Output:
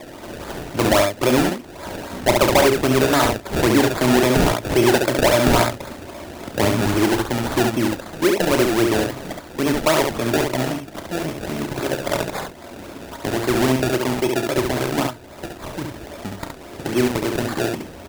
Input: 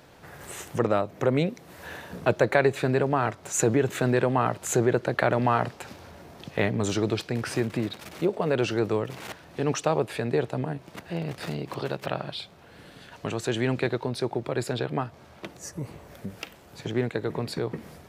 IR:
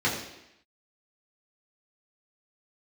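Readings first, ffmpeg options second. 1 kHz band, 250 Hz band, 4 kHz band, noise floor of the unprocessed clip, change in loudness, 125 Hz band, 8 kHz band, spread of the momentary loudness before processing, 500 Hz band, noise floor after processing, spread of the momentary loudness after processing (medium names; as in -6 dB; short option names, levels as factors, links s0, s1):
+7.5 dB, +9.0 dB, +12.5 dB, -51 dBFS, +8.0 dB, +4.5 dB, +8.0 dB, 16 LU, +7.0 dB, -39 dBFS, 17 LU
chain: -filter_complex "[0:a]aecho=1:1:3.2:0.57,acrossover=split=190|1200[s0][s1][s2];[s1]acompressor=mode=upward:threshold=0.0158:ratio=2.5[s3];[s0][s3][s2]amix=inputs=3:normalize=0,acrusher=samples=29:mix=1:aa=0.000001:lfo=1:lforange=29:lforate=3.7,aecho=1:1:32|69:0.282|0.596,asoftclip=type=tanh:threshold=0.251,volume=2"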